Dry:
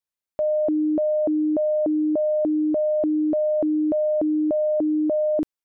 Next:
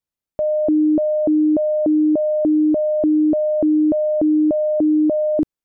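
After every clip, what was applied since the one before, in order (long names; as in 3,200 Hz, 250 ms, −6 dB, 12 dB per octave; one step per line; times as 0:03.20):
low-shelf EQ 440 Hz +11 dB
level −1 dB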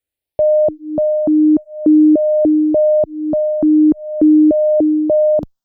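frequency shifter mixed with the dry sound +0.44 Hz
level +7 dB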